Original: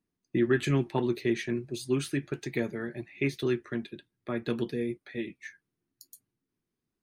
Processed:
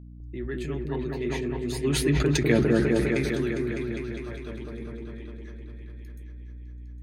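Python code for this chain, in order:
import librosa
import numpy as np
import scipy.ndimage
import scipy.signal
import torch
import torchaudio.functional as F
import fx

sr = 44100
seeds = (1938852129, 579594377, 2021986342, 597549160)

p1 = fx.doppler_pass(x, sr, speed_mps=12, closest_m=3.1, pass_at_s=2.39)
p2 = fx.add_hum(p1, sr, base_hz=60, snr_db=10)
p3 = p2 + fx.echo_opening(p2, sr, ms=202, hz=750, octaves=1, feedback_pct=70, wet_db=0, dry=0)
p4 = fx.sustainer(p3, sr, db_per_s=23.0)
y = F.gain(torch.from_numpy(p4), 7.5).numpy()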